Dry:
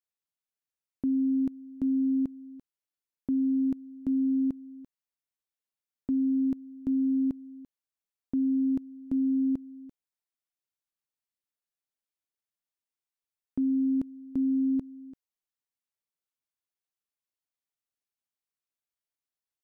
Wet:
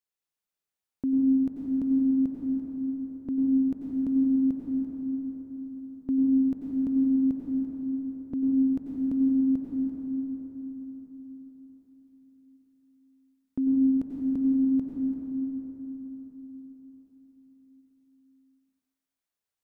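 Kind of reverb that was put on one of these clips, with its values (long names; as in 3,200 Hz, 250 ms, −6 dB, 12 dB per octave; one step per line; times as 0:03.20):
dense smooth reverb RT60 4.7 s, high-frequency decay 0.45×, pre-delay 80 ms, DRR −2 dB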